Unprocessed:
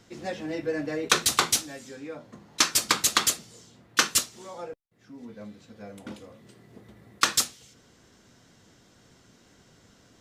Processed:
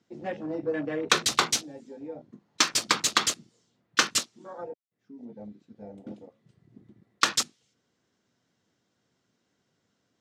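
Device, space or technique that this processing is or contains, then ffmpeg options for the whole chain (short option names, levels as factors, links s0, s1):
over-cleaned archive recording: -af "highpass=110,lowpass=7200,afwtdn=0.0126"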